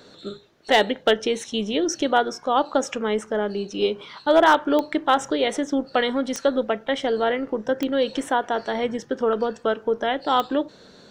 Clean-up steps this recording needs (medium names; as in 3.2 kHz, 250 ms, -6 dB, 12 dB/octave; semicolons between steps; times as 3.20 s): clip repair -7 dBFS; de-click